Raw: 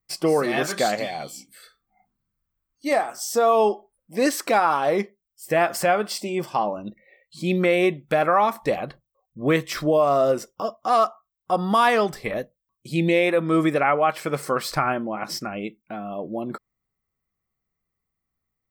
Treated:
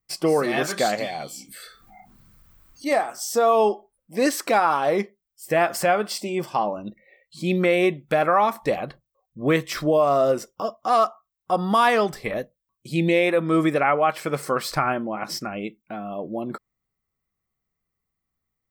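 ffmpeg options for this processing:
-filter_complex "[0:a]asplit=3[s0][s1][s2];[s0]afade=t=out:st=1.3:d=0.02[s3];[s1]acompressor=mode=upward:threshold=0.0251:ratio=2.5:attack=3.2:release=140:knee=2.83:detection=peak,afade=t=in:st=1.3:d=0.02,afade=t=out:st=2.98:d=0.02[s4];[s2]afade=t=in:st=2.98:d=0.02[s5];[s3][s4][s5]amix=inputs=3:normalize=0"

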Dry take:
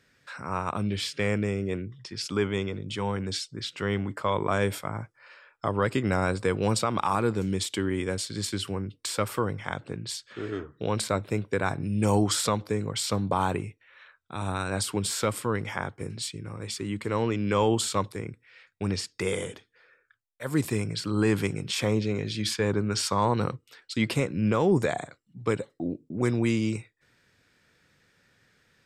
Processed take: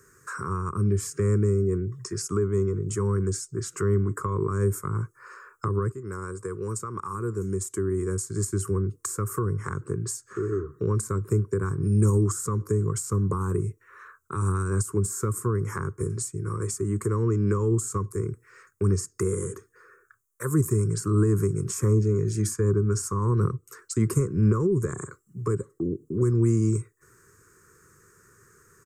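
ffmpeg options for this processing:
-filter_complex "[0:a]asplit=2[s0][s1];[s0]atrim=end=5.92,asetpts=PTS-STARTPTS,afade=t=out:st=5.916:d=0.004:c=hsin:silence=0.149624[s2];[s1]atrim=start=5.92,asetpts=PTS-STARTPTS,afade=t=in:d=2.7:c=qua:silence=0.149624[s3];[s2][s3]concat=n=2:v=0:a=1,firequalizer=gain_entry='entry(120,0);entry(260,-9);entry(390,9);entry(680,-27);entry(1100,7);entry(2200,-15);entry(3400,-27);entry(6600,8)':delay=0.05:min_phase=1,alimiter=limit=0.158:level=0:latency=1:release=199,acrossover=split=260[s4][s5];[s5]acompressor=threshold=0.00891:ratio=5[s6];[s4][s6]amix=inputs=2:normalize=0,volume=2.82"

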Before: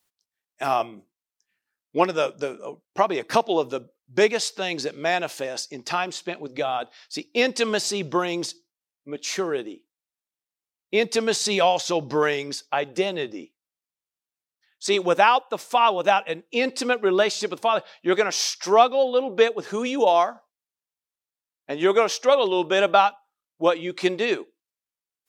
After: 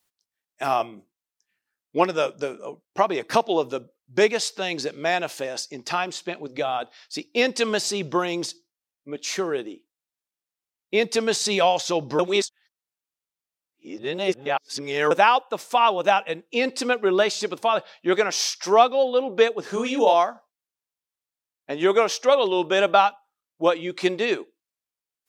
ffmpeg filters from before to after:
-filter_complex "[0:a]asettb=1/sr,asplit=3[s0][s1][s2];[s0]atrim=end=19.624[s3];[s1]atrim=start=19.62:end=20.14,asetpts=PTS-STARTPTS,afade=t=in:d=0.004:c=qsin,afade=t=out:st=0.516:d=0.004:c=qsin,asplit=2[s4][s5];[s5]adelay=31,volume=0.562[s6];[s4][s6]amix=inputs=2:normalize=0,atrim=end_sample=22932[s7];[s2]atrim=start=20.136[s8];[s3][s7]acrossfade=d=0.004:c1=hsin:c2=qsin[s9];[s9][s8]acrossfade=d=0.004:c1=qsin:c2=hsin,asplit=3[s10][s11][s12];[s10]atrim=end=12.192[s13];[s11]atrim=start=12.188:end=15.112,asetpts=PTS-STARTPTS,areverse[s14];[s12]atrim=start=15.108[s15];[s13][s14]acrossfade=d=0.004:c1=hsin:c2=hsin[s16];[s16][s15]acrossfade=d=0.004:c1=hsin:c2=hsin"

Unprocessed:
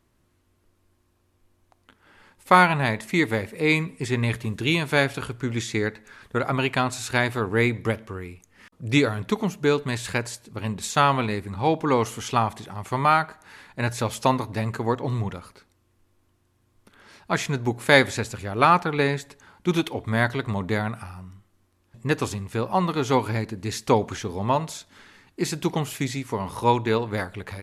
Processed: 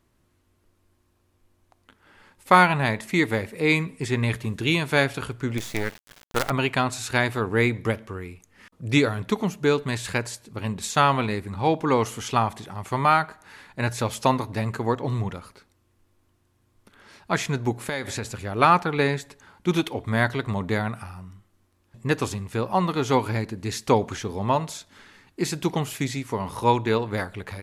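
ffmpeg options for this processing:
-filter_complex "[0:a]asplit=3[s0][s1][s2];[s0]afade=t=out:st=5.57:d=0.02[s3];[s1]acrusher=bits=4:dc=4:mix=0:aa=0.000001,afade=t=in:st=5.57:d=0.02,afade=t=out:st=6.49:d=0.02[s4];[s2]afade=t=in:st=6.49:d=0.02[s5];[s3][s4][s5]amix=inputs=3:normalize=0,asettb=1/sr,asplit=3[s6][s7][s8];[s6]atrim=end=17.884[s9];[s7]atrim=start=17.88:end=18.34,asetpts=PTS-STARTPTS,afade=t=in:d=0.004:c=qsin,afade=t=out:st=0.456:d=0.004:c=qsin,acompressor=threshold=0.0562:ratio=6:attack=3.2:release=140:knee=1:detection=peak[s10];[s8]atrim=start=18.336[s11];[s9][s10]acrossfade=d=0.004:c1=hsin:c2=qsin[s12];[s12][s11]acrossfade=d=0.004:c1=qsin:c2=hsin"

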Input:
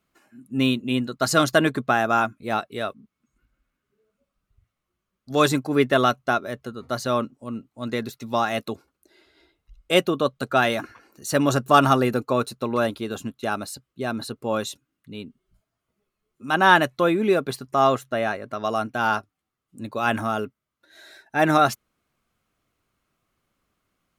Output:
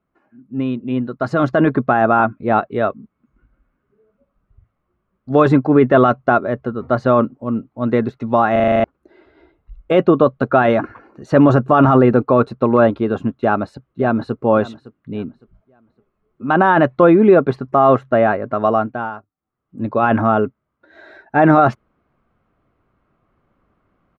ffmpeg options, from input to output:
-filter_complex "[0:a]asplit=2[s0][s1];[s1]afade=t=in:st=13.34:d=0.01,afade=t=out:st=14.38:d=0.01,aecho=0:1:560|1120|1680:0.141254|0.0423761|0.0127128[s2];[s0][s2]amix=inputs=2:normalize=0,asplit=11[s3][s4][s5][s6][s7][s8][s9][s10][s11][s12][s13];[s3]atrim=end=8.562[s14];[s4]atrim=start=8.518:end=8.562[s15];[s5]atrim=start=8.518:end=8.562[s16];[s6]atrim=start=8.518:end=8.562[s17];[s7]atrim=start=8.518:end=8.562[s18];[s8]atrim=start=8.518:end=8.562[s19];[s9]atrim=start=8.518:end=8.562[s20];[s10]atrim=start=8.518:end=8.562[s21];[s11]atrim=start=8.838:end=19.11,asetpts=PTS-STARTPTS,afade=t=out:st=9.812:d=0.46:silence=0.141254[s22];[s12]atrim=start=19.11:end=19.37,asetpts=PTS-STARTPTS,volume=0.141[s23];[s13]atrim=start=19.37,asetpts=PTS-STARTPTS,afade=t=in:d=0.46:silence=0.141254[s24];[s14][s15]acrossfade=d=0.004:c1=hsin:c2=hsin[s25];[s25][s16]acrossfade=d=0.004:c1=hsin:c2=hsin[s26];[s26][s17]acrossfade=d=0.004:c1=hsin:c2=hsin[s27];[s27][s18]acrossfade=d=0.004:c1=hsin:c2=hsin[s28];[s28][s19]acrossfade=d=0.004:c1=hsin:c2=hsin[s29];[s29][s20]acrossfade=d=0.004:c1=hsin:c2=hsin[s30];[s30][s21]acrossfade=d=0.004:c1=hsin:c2=hsin[s31];[s22][s23][s24]concat=n=3:v=0:a=1[s32];[s31][s32]acrossfade=d=0.004:c1=hsin:c2=hsin,alimiter=limit=0.224:level=0:latency=1:release=10,dynaudnorm=f=410:g=7:m=3.76,lowpass=1300,volume=1.19"

